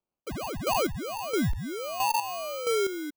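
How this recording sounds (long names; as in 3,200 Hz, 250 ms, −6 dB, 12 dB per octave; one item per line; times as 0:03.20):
chopped level 1.5 Hz, depth 65%, duty 30%
aliases and images of a low sample rate 1,800 Hz, jitter 0%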